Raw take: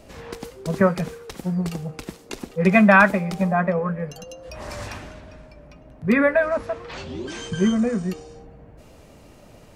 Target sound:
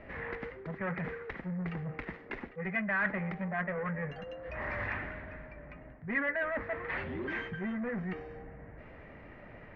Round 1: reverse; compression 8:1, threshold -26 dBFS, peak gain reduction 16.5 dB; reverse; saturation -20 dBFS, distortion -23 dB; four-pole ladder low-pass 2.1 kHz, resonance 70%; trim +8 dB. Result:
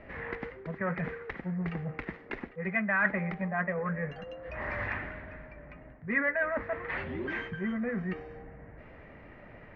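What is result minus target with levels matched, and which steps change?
saturation: distortion -11 dB
change: saturation -28.5 dBFS, distortion -12 dB

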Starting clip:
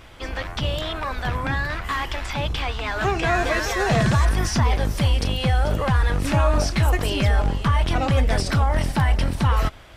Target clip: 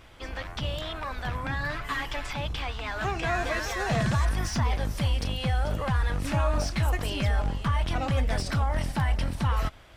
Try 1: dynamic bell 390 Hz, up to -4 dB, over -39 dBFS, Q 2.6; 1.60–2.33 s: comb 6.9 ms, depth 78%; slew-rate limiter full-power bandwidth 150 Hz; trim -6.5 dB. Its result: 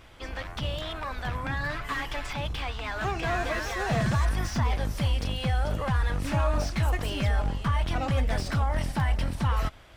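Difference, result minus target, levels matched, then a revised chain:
slew-rate limiter: distortion +14 dB
dynamic bell 390 Hz, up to -4 dB, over -39 dBFS, Q 2.6; 1.60–2.33 s: comb 6.9 ms, depth 78%; slew-rate limiter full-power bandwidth 331 Hz; trim -6.5 dB

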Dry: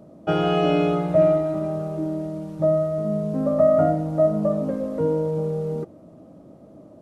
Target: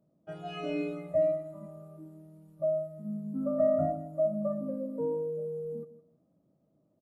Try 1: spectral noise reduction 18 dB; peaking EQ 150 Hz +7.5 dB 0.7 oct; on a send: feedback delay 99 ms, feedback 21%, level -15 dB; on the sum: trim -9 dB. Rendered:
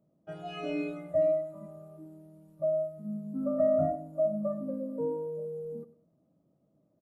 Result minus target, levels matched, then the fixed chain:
echo 61 ms early
spectral noise reduction 18 dB; peaking EQ 150 Hz +7.5 dB 0.7 oct; on a send: feedback delay 160 ms, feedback 21%, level -15 dB; on the sum: trim -9 dB

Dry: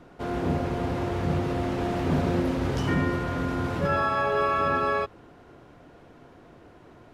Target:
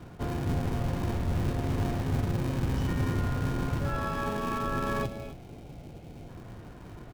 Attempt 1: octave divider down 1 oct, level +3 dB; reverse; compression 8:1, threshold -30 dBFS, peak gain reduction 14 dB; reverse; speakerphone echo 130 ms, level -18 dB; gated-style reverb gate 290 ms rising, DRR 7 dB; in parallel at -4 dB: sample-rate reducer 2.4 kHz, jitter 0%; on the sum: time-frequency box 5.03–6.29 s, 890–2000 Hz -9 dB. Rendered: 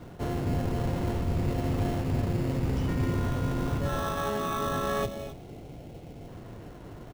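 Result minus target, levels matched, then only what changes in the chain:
sample-rate reducer: distortion -7 dB
change: sample-rate reducer 680 Hz, jitter 0%

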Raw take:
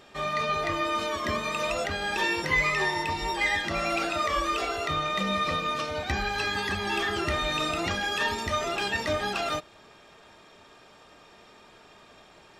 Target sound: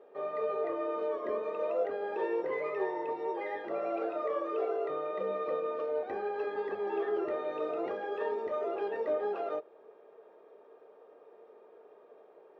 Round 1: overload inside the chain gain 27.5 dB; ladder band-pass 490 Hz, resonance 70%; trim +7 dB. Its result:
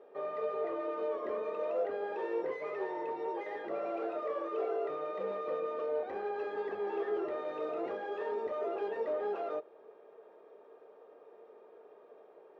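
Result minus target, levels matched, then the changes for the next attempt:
overload inside the chain: distortion +19 dB
change: overload inside the chain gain 18.5 dB

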